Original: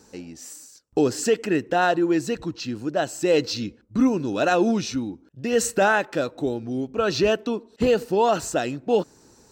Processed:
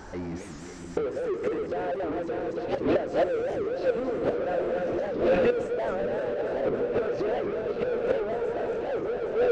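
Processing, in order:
feedback delay that plays each chunk backwards 141 ms, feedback 76%, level −4.5 dB
mains-hum notches 50/100/150/200/250/300/350/400 Hz
noise gate −30 dBFS, range −13 dB
octave-band graphic EQ 125/250/500/1,000/2,000/4,000 Hz −12/−11/+11/−9/+4/−4 dB
automatic gain control gain up to 8.5 dB
phaser swept by the level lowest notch 470 Hz, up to 3,900 Hz, full sweep at −12 dBFS
gate with flip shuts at −13 dBFS, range −35 dB
power curve on the samples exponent 0.35
head-to-tape spacing loss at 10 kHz 35 dB
echo whose low-pass opens from repeat to repeat 676 ms, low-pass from 200 Hz, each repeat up 2 octaves, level −6 dB
wow of a warped record 78 rpm, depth 250 cents
level −1.5 dB

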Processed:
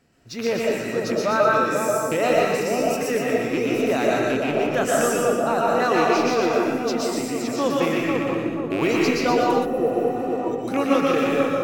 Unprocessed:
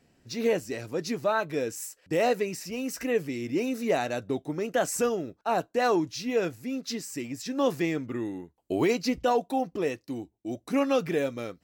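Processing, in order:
loose part that buzzes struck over −31 dBFS, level −22 dBFS
parametric band 1,300 Hz +6 dB 0.53 octaves
on a send: echo with a time of its own for lows and highs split 1,200 Hz, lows 487 ms, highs 120 ms, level −3.5 dB
on the sum: comb and all-pass reverb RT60 0.87 s, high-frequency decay 0.5×, pre-delay 95 ms, DRR −2 dB
healed spectral selection 0:09.68–0:10.35, 730–10,000 Hz after
level +1 dB

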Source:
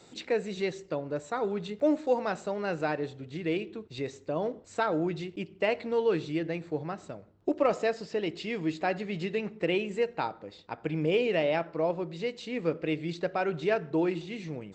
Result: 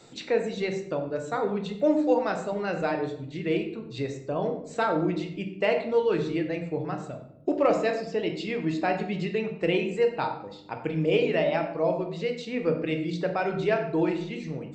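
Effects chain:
reverb reduction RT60 0.92 s
on a send: convolution reverb RT60 0.75 s, pre-delay 14 ms, DRR 4 dB
on the sum: level +2 dB

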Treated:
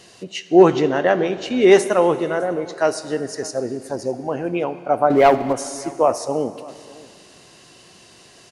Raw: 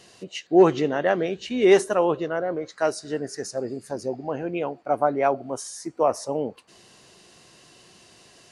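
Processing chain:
0:05.10–0:05.53: leveller curve on the samples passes 2
single-tap delay 607 ms −22.5 dB
dense smooth reverb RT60 2.3 s, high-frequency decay 0.95×, DRR 12.5 dB
level +4.5 dB

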